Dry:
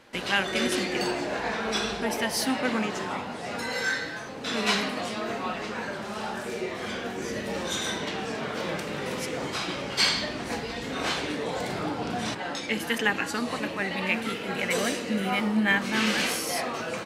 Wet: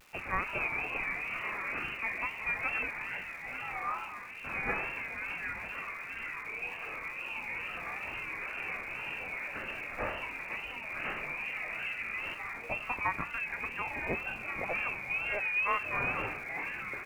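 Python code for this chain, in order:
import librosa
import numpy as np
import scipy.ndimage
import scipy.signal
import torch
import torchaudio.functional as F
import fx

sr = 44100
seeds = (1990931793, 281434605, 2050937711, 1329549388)

y = fx.freq_invert(x, sr, carrier_hz=2800)
y = fx.dmg_crackle(y, sr, seeds[0], per_s=590.0, level_db=-41.0)
y = fx.wow_flutter(y, sr, seeds[1], rate_hz=2.1, depth_cents=100.0)
y = y * 10.0 ** (-7.0 / 20.0)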